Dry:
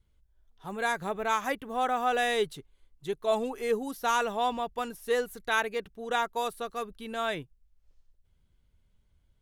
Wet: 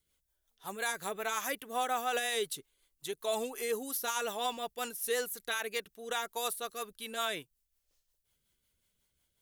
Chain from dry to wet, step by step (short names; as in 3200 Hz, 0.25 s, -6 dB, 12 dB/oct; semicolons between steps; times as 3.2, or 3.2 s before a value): RIAA curve recording; rotary speaker horn 5.5 Hz; limiter -22 dBFS, peak gain reduction 11.5 dB